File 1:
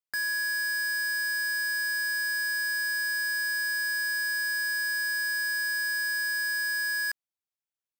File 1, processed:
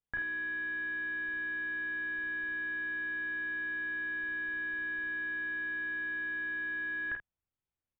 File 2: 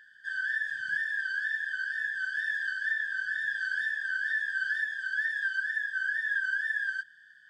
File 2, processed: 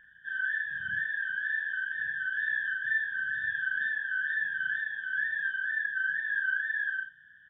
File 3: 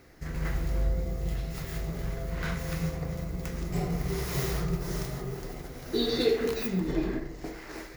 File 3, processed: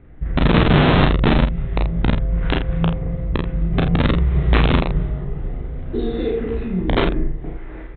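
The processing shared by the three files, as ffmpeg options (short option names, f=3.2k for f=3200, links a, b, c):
-filter_complex "[0:a]aemphasis=mode=reproduction:type=riaa,aresample=8000,aeval=exprs='(mod(3.16*val(0)+1,2)-1)/3.16':c=same,aresample=44100,asplit=2[a][b];[b]adelay=48,volume=-7dB[c];[a][c]amix=inputs=2:normalize=0,aecho=1:1:17|35:0.178|0.668,volume=-1dB"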